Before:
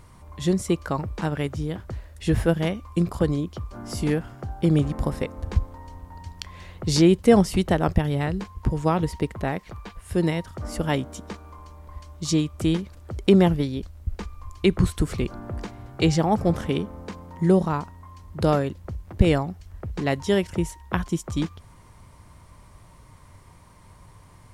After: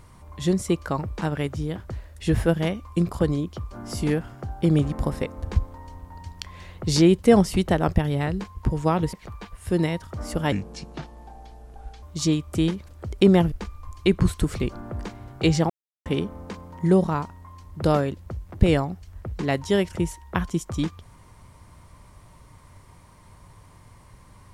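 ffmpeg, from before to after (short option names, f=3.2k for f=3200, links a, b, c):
-filter_complex "[0:a]asplit=7[a][b][c][d][e][f][g];[a]atrim=end=9.132[h];[b]atrim=start=9.568:end=10.964[i];[c]atrim=start=10.96:end=12.09,asetpts=PTS-STARTPTS,asetrate=33075,aresample=44100[j];[d]atrim=start=12.086:end=13.582[k];[e]atrim=start=14.098:end=16.28,asetpts=PTS-STARTPTS,afade=t=out:st=2.178:d=0.004:c=hsin[l];[f]atrim=start=16.28:end=16.64,asetpts=PTS-STARTPTS,volume=0[m];[g]atrim=start=16.64,asetpts=PTS-STARTPTS,afade=t=in:d=0.004:c=hsin[n];[h][i]acrossfade=d=0.004:c1=hsin:c2=hsin[o];[o][j]acrossfade=d=0.004:c1=hsin:c2=hsin[p];[p][k]acrossfade=d=0.004:c1=hsin:c2=hsin[q];[l][m][n]concat=n=3:v=0:a=1[r];[q][r]acrossfade=d=0.004:c1=hsin:c2=hsin"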